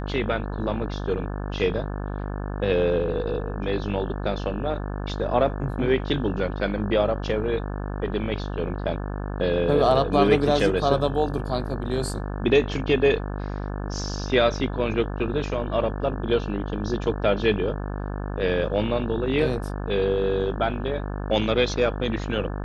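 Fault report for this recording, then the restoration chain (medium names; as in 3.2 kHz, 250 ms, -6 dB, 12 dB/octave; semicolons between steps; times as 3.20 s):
buzz 50 Hz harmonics 35 -30 dBFS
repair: de-hum 50 Hz, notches 35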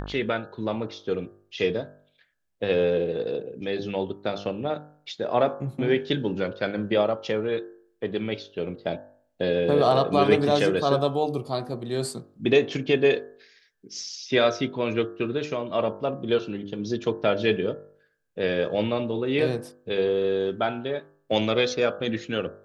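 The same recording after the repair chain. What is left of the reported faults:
nothing left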